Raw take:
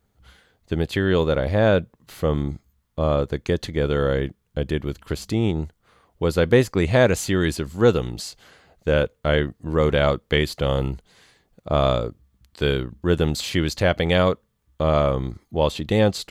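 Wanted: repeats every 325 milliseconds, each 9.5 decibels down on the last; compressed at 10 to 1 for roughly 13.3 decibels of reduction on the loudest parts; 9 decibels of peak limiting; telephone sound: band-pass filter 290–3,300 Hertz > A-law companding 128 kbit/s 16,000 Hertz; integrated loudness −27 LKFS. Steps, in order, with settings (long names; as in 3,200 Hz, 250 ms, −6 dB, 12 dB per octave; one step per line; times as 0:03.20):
downward compressor 10 to 1, threshold −24 dBFS
brickwall limiter −23.5 dBFS
band-pass filter 290–3,300 Hz
repeating echo 325 ms, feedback 33%, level −9.5 dB
level +10.5 dB
A-law companding 128 kbit/s 16,000 Hz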